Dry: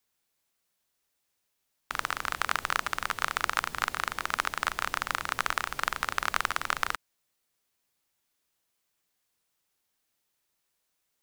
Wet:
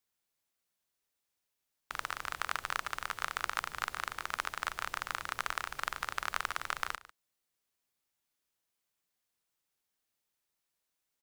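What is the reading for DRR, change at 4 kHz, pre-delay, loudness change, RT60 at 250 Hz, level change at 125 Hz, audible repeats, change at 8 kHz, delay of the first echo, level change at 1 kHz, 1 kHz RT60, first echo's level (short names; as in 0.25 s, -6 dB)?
none, -6.5 dB, none, -6.5 dB, none, -7.0 dB, 1, -6.5 dB, 0.147 s, -6.5 dB, none, -17.5 dB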